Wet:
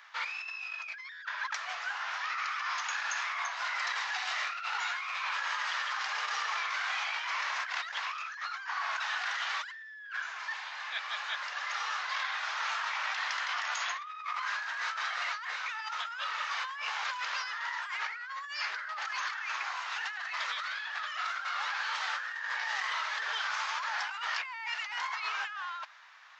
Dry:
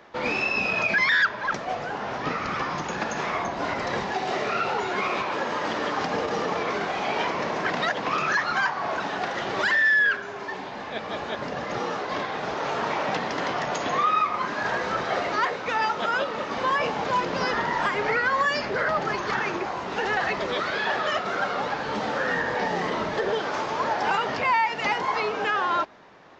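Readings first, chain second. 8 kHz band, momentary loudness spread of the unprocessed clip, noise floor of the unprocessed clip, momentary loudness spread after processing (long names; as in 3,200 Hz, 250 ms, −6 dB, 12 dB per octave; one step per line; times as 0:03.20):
can't be measured, 7 LU, −35 dBFS, 5 LU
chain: high-pass filter 1,200 Hz 24 dB per octave
compressor whose output falls as the input rises −34 dBFS, ratio −1
level −2.5 dB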